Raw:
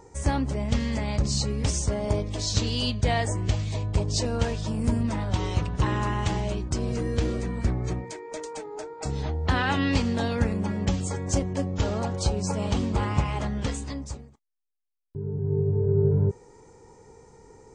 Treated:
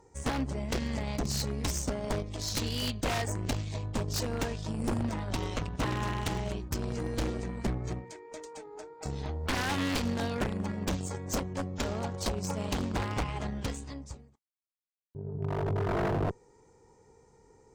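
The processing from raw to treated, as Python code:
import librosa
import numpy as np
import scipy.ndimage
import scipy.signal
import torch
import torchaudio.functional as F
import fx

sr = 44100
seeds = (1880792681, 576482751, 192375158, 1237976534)

y = fx.cheby_harmonics(x, sr, harmonics=(2, 3, 4, 7), levels_db=(-16, -42, -20, -21), full_scale_db=-9.0)
y = 10.0 ** (-22.5 / 20.0) * (np.abs((y / 10.0 ** (-22.5 / 20.0) + 3.0) % 4.0 - 2.0) - 1.0)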